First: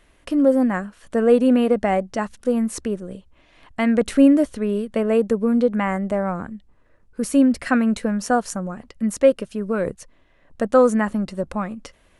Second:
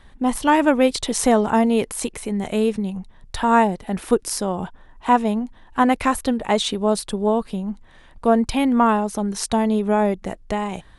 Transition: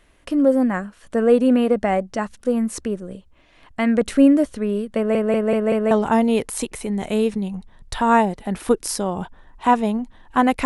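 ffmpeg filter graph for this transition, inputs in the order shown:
ffmpeg -i cue0.wav -i cue1.wav -filter_complex "[0:a]apad=whole_dur=10.65,atrim=end=10.65,asplit=5[link_01][link_02][link_03][link_04][link_05];[link_01]atrim=end=5.152[link_06];[link_02]atrim=start=4.958:end=5.152[link_07];[link_03]atrim=start=4.958:end=5.152[link_08];[link_04]atrim=start=4.958:end=5.152[link_09];[link_05]atrim=start=4.958:end=5.152[link_10];[1:a]atrim=start=1.328:end=6.07[link_11];[link_06][link_07]acrossfade=duration=0.004:curve1=hsin:curve2=hsin[link_12];[link_12][link_08]acrossfade=duration=0.004:curve1=hsin:curve2=hsin[link_13];[link_13][link_09]acrossfade=duration=0.004:curve1=hsin:curve2=hsin[link_14];[link_14][link_10]acrossfade=duration=0.004:curve1=hsin:curve2=hsin[link_15];[link_15][link_11]acrossfade=duration=0.004:curve1=hsin:curve2=hsin" out.wav

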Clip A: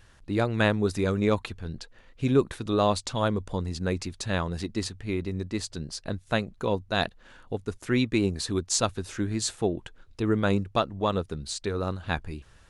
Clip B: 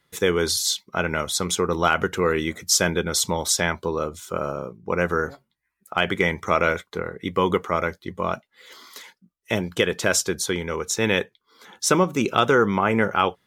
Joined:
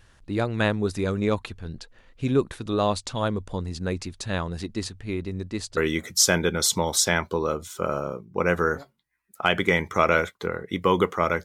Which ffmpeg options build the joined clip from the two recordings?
ffmpeg -i cue0.wav -i cue1.wav -filter_complex "[0:a]apad=whole_dur=11.44,atrim=end=11.44,atrim=end=5.772[link_01];[1:a]atrim=start=2.288:end=7.96[link_02];[link_01][link_02]acrossfade=duration=0.004:curve1=hsin:curve2=hsin" out.wav

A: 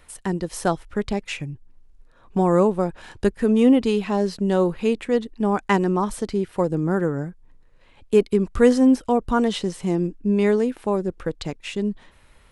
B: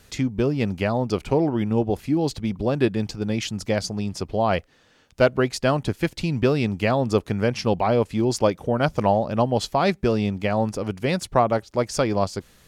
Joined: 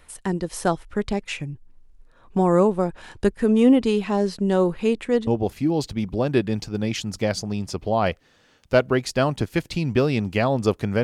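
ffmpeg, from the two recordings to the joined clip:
ffmpeg -i cue0.wav -i cue1.wav -filter_complex "[0:a]apad=whole_dur=11.03,atrim=end=11.03,atrim=end=5.272[link_01];[1:a]atrim=start=1.738:end=7.5[link_02];[link_01][link_02]acrossfade=duration=0.004:curve1=hsin:curve2=hsin" out.wav

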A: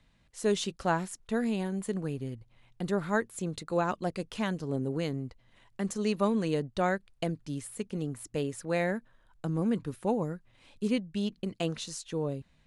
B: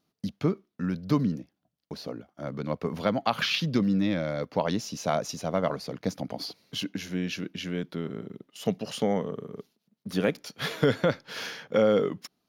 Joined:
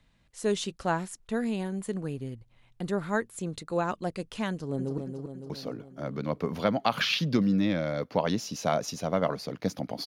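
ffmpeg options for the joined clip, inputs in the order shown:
ffmpeg -i cue0.wav -i cue1.wav -filter_complex "[0:a]apad=whole_dur=10.06,atrim=end=10.06,atrim=end=4.982[link_01];[1:a]atrim=start=1.388:end=6.47[link_02];[link_01][link_02]acrossfade=duration=0.004:curve1=hsin:curve2=hsin,asplit=2[link_03][link_04];[link_04]afade=type=in:start_time=4.5:duration=0.01,afade=type=out:start_time=4.98:duration=0.01,aecho=0:1:280|560|840|1120|1400|1680|1960|2240:0.501187|0.300712|0.180427|0.108256|0.0649539|0.0389723|0.0233834|0.01403[link_05];[link_03][link_05]amix=inputs=2:normalize=0" out.wav

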